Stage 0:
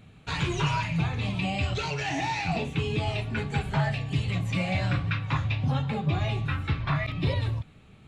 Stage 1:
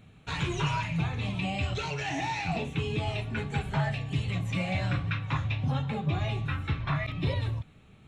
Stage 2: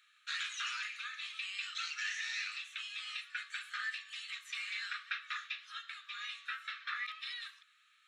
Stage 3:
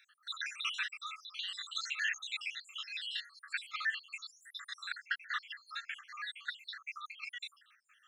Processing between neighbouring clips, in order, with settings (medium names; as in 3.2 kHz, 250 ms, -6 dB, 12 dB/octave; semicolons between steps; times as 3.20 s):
band-stop 4.7 kHz, Q 8.8; trim -2.5 dB
rippled Chebyshev high-pass 1.2 kHz, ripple 6 dB; trim +1.5 dB
random holes in the spectrogram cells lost 76%; trim +6 dB